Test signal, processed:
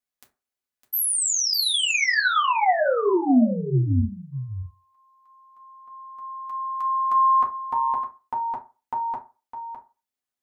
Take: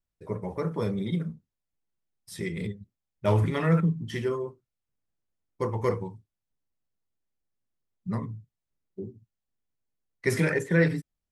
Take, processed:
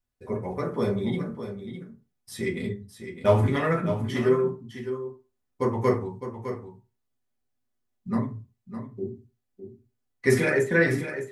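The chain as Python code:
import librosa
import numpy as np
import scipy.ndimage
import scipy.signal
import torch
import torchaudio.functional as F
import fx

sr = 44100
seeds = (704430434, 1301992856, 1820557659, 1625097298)

p1 = x + fx.echo_single(x, sr, ms=608, db=-10.0, dry=0)
y = fx.rev_fdn(p1, sr, rt60_s=0.31, lf_ratio=0.9, hf_ratio=0.55, size_ms=24.0, drr_db=-1.5)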